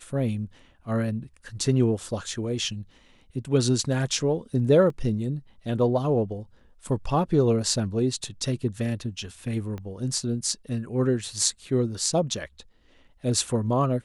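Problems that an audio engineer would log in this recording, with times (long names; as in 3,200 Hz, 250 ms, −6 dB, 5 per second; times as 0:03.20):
0:04.90: drop-out 2.1 ms
0:09.78: click −24 dBFS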